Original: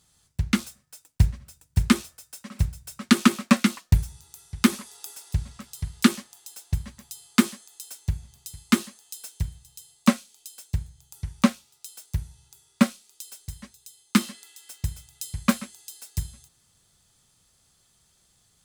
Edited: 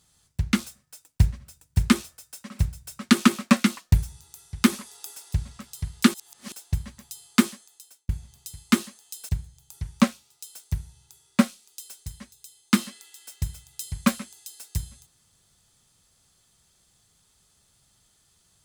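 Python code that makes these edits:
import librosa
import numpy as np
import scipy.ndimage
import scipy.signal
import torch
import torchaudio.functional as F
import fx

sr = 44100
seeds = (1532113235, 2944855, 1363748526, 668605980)

y = fx.edit(x, sr, fx.reverse_span(start_s=6.14, length_s=0.38),
    fx.fade_out_span(start_s=7.42, length_s=0.67),
    fx.cut(start_s=9.29, length_s=1.42), tone=tone)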